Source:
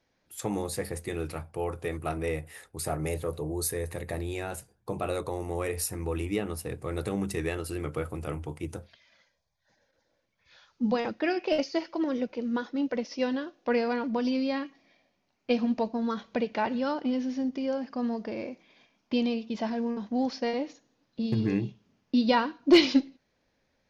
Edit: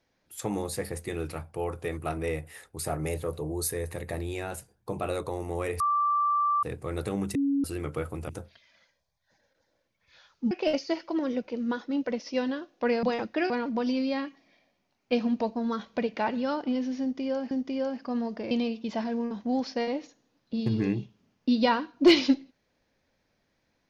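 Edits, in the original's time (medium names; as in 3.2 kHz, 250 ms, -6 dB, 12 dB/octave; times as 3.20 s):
5.80–6.63 s: bleep 1.17 kHz -22 dBFS
7.35–7.64 s: bleep 279 Hz -22.5 dBFS
8.29–8.67 s: delete
10.89–11.36 s: move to 13.88 s
17.39–17.89 s: loop, 2 plays
18.39–19.17 s: delete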